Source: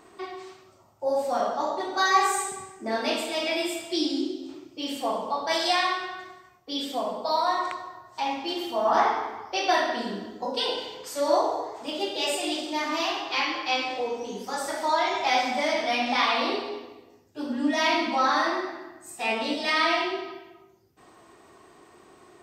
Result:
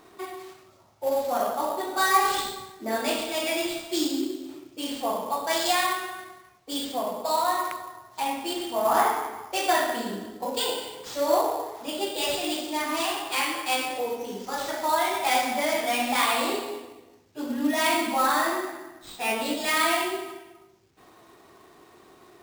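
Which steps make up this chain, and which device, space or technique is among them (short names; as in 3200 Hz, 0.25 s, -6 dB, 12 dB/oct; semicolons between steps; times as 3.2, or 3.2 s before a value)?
early companding sampler (sample-rate reducer 12000 Hz, jitter 0%; companded quantiser 6-bit)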